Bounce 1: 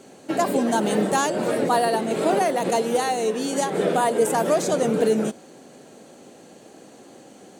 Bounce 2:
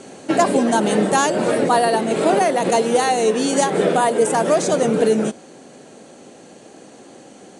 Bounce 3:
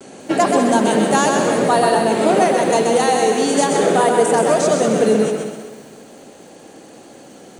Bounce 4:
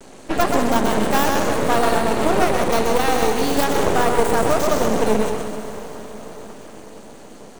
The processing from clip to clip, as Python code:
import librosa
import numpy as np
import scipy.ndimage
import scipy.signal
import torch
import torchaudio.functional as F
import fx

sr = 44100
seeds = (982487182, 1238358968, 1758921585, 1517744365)

y1 = scipy.signal.sosfilt(scipy.signal.cheby1(10, 1.0, 11000.0, 'lowpass', fs=sr, output='sos'), x)
y1 = fx.rider(y1, sr, range_db=4, speed_s=0.5)
y1 = F.gain(torch.from_numpy(y1), 5.5).numpy()
y2 = fx.echo_feedback(y1, sr, ms=129, feedback_pct=45, wet_db=-4.5)
y2 = fx.vibrato(y2, sr, rate_hz=0.34, depth_cents=22.0)
y2 = fx.echo_crushed(y2, sr, ms=194, feedback_pct=35, bits=7, wet_db=-10)
y3 = fx.tracing_dist(y2, sr, depth_ms=0.16)
y3 = fx.echo_diffused(y3, sr, ms=506, feedback_pct=60, wet_db=-14.5)
y3 = np.maximum(y3, 0.0)